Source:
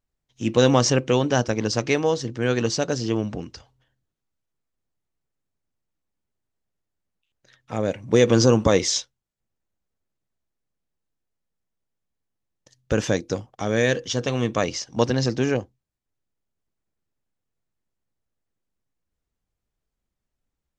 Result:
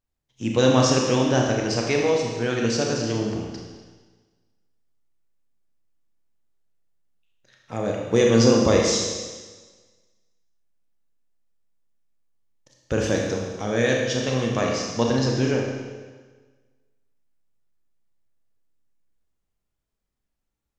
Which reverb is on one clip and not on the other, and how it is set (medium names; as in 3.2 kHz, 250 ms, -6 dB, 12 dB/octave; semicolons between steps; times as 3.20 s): Schroeder reverb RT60 1.4 s, combs from 27 ms, DRR -0.5 dB; trim -3 dB